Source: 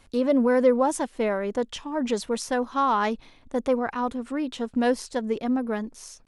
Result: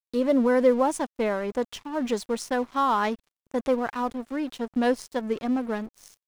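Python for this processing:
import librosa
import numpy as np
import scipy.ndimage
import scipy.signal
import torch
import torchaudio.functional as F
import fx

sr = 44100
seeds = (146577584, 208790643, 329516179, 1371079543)

y = fx.dmg_crackle(x, sr, seeds[0], per_s=390.0, level_db=-52.0)
y = np.sign(y) * np.maximum(np.abs(y) - 10.0 ** (-42.5 / 20.0), 0.0)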